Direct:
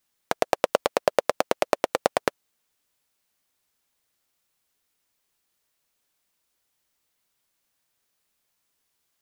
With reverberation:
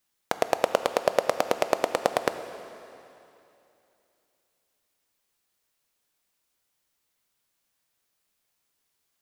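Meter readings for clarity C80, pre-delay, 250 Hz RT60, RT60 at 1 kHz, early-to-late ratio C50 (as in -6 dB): 11.0 dB, 6 ms, 2.9 s, 2.8 s, 10.5 dB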